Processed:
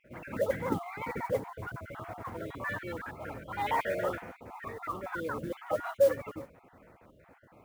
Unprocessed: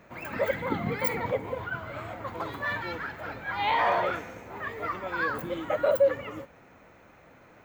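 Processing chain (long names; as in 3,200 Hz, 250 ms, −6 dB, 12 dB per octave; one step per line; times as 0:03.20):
time-frequency cells dropped at random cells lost 36%
head-to-tape spacing loss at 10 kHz 27 dB
noise that follows the level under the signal 24 dB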